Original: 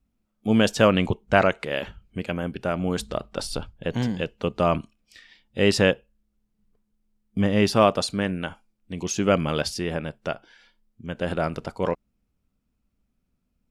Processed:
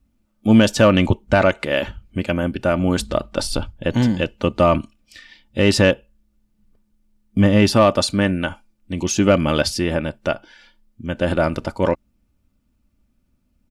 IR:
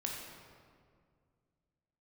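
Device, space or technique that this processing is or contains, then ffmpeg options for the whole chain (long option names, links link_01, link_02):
soft clipper into limiter: -af "asoftclip=type=tanh:threshold=-6dB,alimiter=limit=-11dB:level=0:latency=1:release=153,equalizer=frequency=110:width_type=o:width=1.4:gain=5.5,aecho=1:1:3.4:0.44,volume=6dB"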